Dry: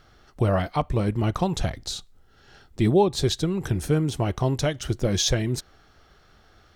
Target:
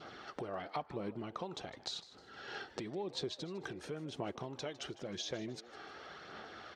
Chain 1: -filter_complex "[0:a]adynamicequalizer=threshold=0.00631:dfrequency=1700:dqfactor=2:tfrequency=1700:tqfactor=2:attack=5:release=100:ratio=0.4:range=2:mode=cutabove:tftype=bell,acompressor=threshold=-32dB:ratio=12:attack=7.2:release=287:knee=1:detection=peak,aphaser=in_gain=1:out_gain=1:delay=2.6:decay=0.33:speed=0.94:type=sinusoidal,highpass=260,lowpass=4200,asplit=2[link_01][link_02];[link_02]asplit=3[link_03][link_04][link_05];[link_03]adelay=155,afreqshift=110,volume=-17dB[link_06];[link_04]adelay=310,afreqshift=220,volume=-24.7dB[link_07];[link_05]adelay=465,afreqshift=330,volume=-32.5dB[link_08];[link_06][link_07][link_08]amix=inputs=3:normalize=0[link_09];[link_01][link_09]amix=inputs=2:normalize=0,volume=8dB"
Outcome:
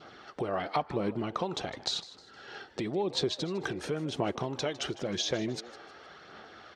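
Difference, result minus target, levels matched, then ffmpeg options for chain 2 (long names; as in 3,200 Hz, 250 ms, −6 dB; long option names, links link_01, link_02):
downward compressor: peak gain reduction −9.5 dB
-filter_complex "[0:a]adynamicequalizer=threshold=0.00631:dfrequency=1700:dqfactor=2:tfrequency=1700:tqfactor=2:attack=5:release=100:ratio=0.4:range=2:mode=cutabove:tftype=bell,acompressor=threshold=-42.5dB:ratio=12:attack=7.2:release=287:knee=1:detection=peak,aphaser=in_gain=1:out_gain=1:delay=2.6:decay=0.33:speed=0.94:type=sinusoidal,highpass=260,lowpass=4200,asplit=2[link_01][link_02];[link_02]asplit=3[link_03][link_04][link_05];[link_03]adelay=155,afreqshift=110,volume=-17dB[link_06];[link_04]adelay=310,afreqshift=220,volume=-24.7dB[link_07];[link_05]adelay=465,afreqshift=330,volume=-32.5dB[link_08];[link_06][link_07][link_08]amix=inputs=3:normalize=0[link_09];[link_01][link_09]amix=inputs=2:normalize=0,volume=8dB"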